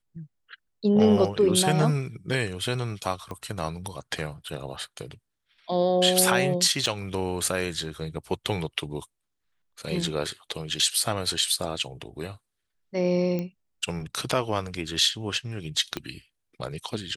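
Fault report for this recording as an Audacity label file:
3.310000	3.310000	pop -23 dBFS
6.860000	6.860000	dropout 3.8 ms
13.390000	13.390000	pop -18 dBFS
15.970000	15.970000	pop -15 dBFS

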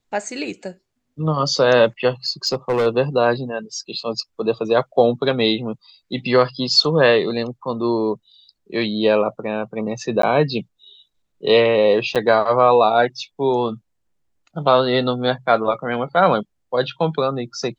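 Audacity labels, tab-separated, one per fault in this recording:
2.260000	2.870000	clipped -14 dBFS
10.220000	10.230000	dropout 13 ms
12.150000	12.160000	dropout 7.2 ms

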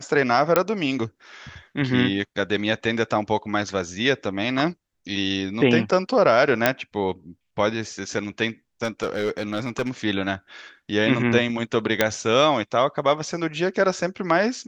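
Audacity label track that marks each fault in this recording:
0.560000	0.560000	pop -3 dBFS
6.660000	6.660000	pop -2 dBFS
8.840000	9.900000	clipped -18.5 dBFS
12.010000	12.010000	pop -2 dBFS

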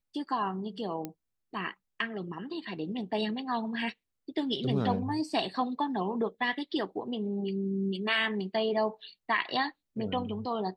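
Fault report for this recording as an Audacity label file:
1.050000	1.050000	pop -21 dBFS

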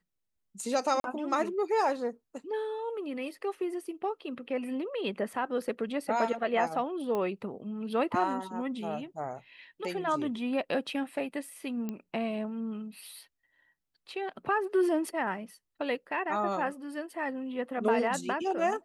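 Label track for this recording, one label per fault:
1.000000	1.040000	dropout 42 ms
7.150000	7.150000	pop -21 dBFS
11.890000	11.890000	pop -23 dBFS

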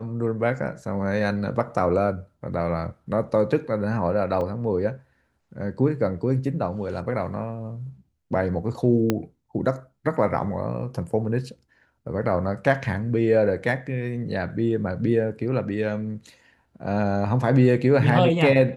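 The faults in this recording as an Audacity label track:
4.410000	4.410000	dropout 2.4 ms
9.100000	9.100000	pop -8 dBFS
13.620000	13.620000	dropout 2 ms

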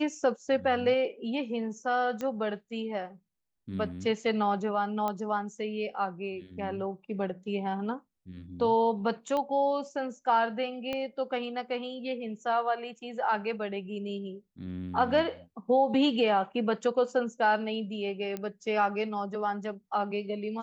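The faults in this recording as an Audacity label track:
2.210000	2.210000	pop -21 dBFS
5.080000	5.080000	pop -18 dBFS
9.370000	9.370000	pop -20 dBFS
10.930000	10.930000	pop -20 dBFS
18.370000	18.370000	pop -21 dBFS

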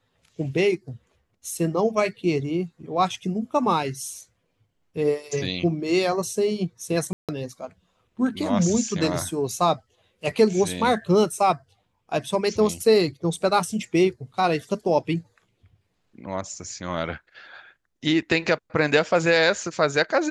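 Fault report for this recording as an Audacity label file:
7.130000	7.290000	dropout 157 ms

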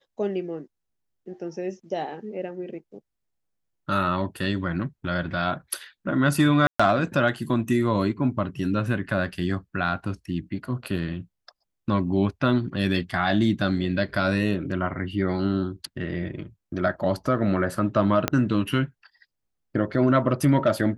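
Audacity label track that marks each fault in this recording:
6.670000	6.790000	dropout 125 ms
18.280000	18.280000	pop -6 dBFS

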